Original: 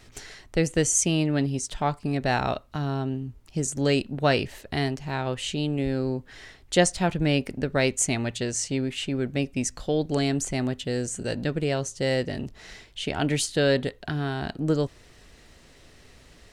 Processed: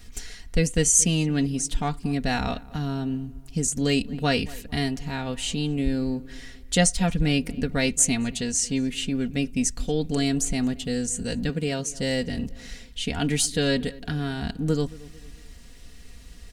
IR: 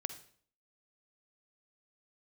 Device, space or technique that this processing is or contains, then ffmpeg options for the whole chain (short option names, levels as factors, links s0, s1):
smiley-face EQ: -filter_complex "[0:a]asettb=1/sr,asplit=3[s0][s1][s2];[s0]atrim=end=11.494[s3];[s1]atrim=start=11.49:end=11.9,asetpts=PTS-STARTPTS,afade=t=in:d=0.004:c=qsin,afade=t=out:st=0.406:d=0.004:c=qsin,highpass=110[s4];[s2]atrim=start=11.896[s5];[s3][s4]acrossfade=d=0.004:c1=hsin:c2=qsin[s6];[s6][s5]acrossfade=d=0.004:c1=qsin:c2=hsin,lowshelf=f=180:g=9,equalizer=f=620:t=o:w=2.6:g=-6.5,highshelf=f=8300:g=8,aecho=1:1:4.2:0.66,asplit=2[s7][s8];[s8]adelay=225,lowpass=f=1900:p=1,volume=0.1,asplit=2[s9][s10];[s10]adelay=225,lowpass=f=1900:p=1,volume=0.46,asplit=2[s11][s12];[s12]adelay=225,lowpass=f=1900:p=1,volume=0.46[s13];[s7][s9][s11][s13]amix=inputs=4:normalize=0"